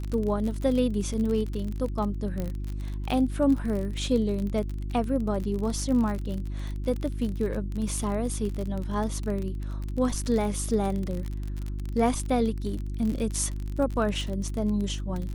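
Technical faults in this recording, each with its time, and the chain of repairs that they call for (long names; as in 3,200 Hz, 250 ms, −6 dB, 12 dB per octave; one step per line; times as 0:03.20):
surface crackle 39 per second −30 dBFS
mains hum 50 Hz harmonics 7 −32 dBFS
0:02.40: click −19 dBFS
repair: click removal
hum removal 50 Hz, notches 7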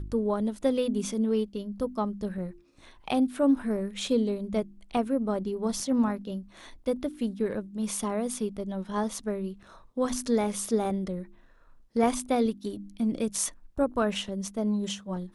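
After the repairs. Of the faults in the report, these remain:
none of them is left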